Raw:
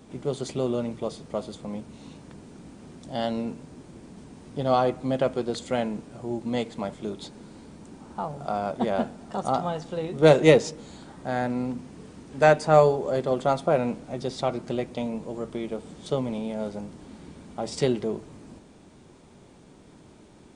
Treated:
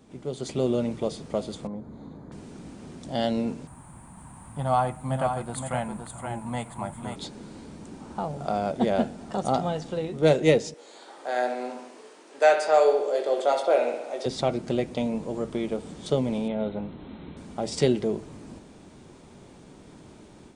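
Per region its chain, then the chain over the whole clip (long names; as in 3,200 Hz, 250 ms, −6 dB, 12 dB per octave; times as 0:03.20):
0:01.67–0:02.32: moving average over 16 samples + downward compressor 1.5 to 1, threshold −42 dBFS
0:03.67–0:07.16: drawn EQ curve 130 Hz 0 dB, 430 Hz −17 dB, 920 Hz +6 dB, 5,600 Hz −16 dB, 8,900 Hz +10 dB + single-tap delay 518 ms −6.5 dB
0:10.74–0:14.26: high-pass filter 400 Hz 24 dB per octave + double-tracking delay 21 ms −7 dB + bucket-brigade delay 64 ms, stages 2,048, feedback 61%, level −8 dB
0:16.48–0:17.37: linear-phase brick-wall low-pass 4,200 Hz + notch filter 1,700 Hz, Q 20
whole clip: dynamic equaliser 1,100 Hz, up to −7 dB, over −41 dBFS, Q 1.7; automatic gain control gain up to 8 dB; level −5 dB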